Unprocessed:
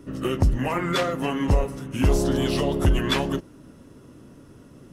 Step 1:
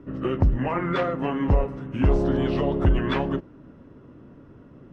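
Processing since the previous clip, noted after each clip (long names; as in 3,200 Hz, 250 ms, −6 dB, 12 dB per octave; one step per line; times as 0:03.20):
low-pass filter 2,000 Hz 12 dB per octave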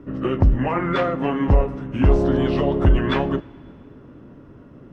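coupled-rooms reverb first 0.23 s, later 2.6 s, from −19 dB, DRR 13.5 dB
level +3.5 dB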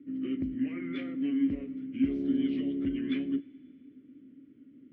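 formant filter i
level −2.5 dB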